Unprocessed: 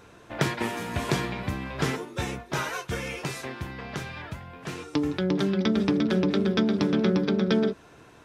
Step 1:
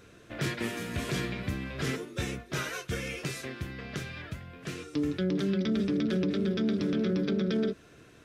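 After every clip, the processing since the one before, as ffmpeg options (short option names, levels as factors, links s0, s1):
-af "equalizer=f=890:w=2.2:g=-13,alimiter=limit=0.1:level=0:latency=1:release=11,volume=0.841"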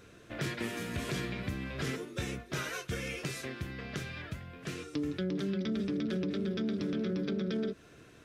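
-af "acompressor=threshold=0.0251:ratio=2,volume=0.891"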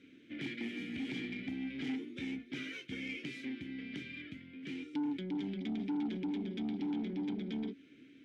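-filter_complex "[0:a]asplit=3[s0][s1][s2];[s0]bandpass=f=270:t=q:w=8,volume=1[s3];[s1]bandpass=f=2290:t=q:w=8,volume=0.501[s4];[s2]bandpass=f=3010:t=q:w=8,volume=0.355[s5];[s3][s4][s5]amix=inputs=3:normalize=0,asoftclip=type=tanh:threshold=0.0106,volume=2.66"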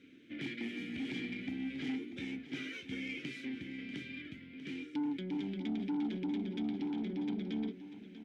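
-af "aecho=1:1:641:0.237"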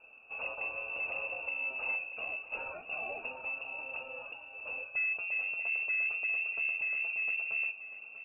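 -af "lowpass=f=2500:t=q:w=0.5098,lowpass=f=2500:t=q:w=0.6013,lowpass=f=2500:t=q:w=0.9,lowpass=f=2500:t=q:w=2.563,afreqshift=-2900,volume=1.33"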